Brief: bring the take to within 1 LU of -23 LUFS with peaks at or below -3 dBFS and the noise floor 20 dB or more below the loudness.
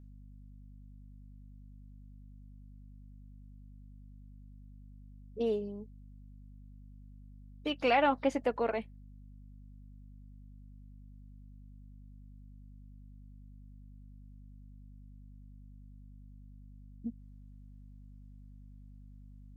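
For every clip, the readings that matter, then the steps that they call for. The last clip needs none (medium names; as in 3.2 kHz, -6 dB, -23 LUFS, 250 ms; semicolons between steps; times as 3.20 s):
hum 50 Hz; highest harmonic 250 Hz; hum level -49 dBFS; loudness -33.0 LUFS; peak level -15.5 dBFS; loudness target -23.0 LUFS
-> hum notches 50/100/150/200/250 Hz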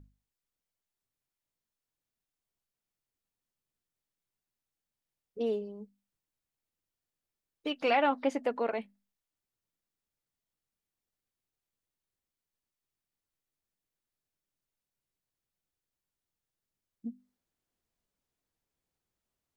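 hum not found; loudness -31.5 LUFS; peak level -15.5 dBFS; loudness target -23.0 LUFS
-> trim +8.5 dB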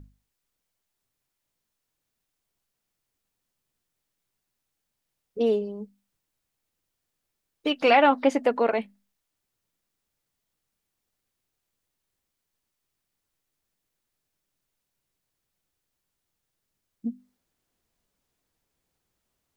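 loudness -23.0 LUFS; peak level -7.0 dBFS; noise floor -82 dBFS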